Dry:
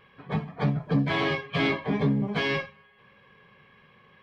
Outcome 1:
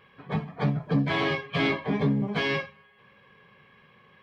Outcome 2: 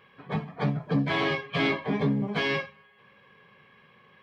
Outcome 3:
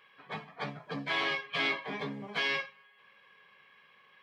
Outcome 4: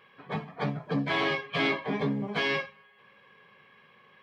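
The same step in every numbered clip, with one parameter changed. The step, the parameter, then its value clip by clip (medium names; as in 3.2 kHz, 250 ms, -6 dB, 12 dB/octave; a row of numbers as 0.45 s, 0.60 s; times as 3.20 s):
high-pass, cutoff frequency: 45 Hz, 120 Hz, 1.4 kHz, 330 Hz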